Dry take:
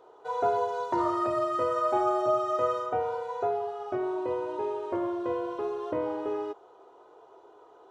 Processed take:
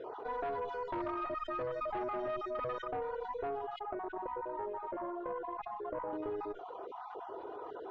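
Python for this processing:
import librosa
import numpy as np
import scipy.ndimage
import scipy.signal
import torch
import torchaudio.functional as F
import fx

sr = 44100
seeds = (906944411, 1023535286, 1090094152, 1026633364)

y = fx.spec_dropout(x, sr, seeds[0], share_pct=21)
y = fx.dereverb_blind(y, sr, rt60_s=0.72)
y = fx.bandpass_q(y, sr, hz=870.0, q=1.3, at=(3.79, 6.13))
y = fx.tube_stage(y, sr, drive_db=26.0, bias=0.55)
y = fx.air_absorb(y, sr, metres=270.0)
y = fx.env_flatten(y, sr, amount_pct=70)
y = y * 10.0 ** (-6.0 / 20.0)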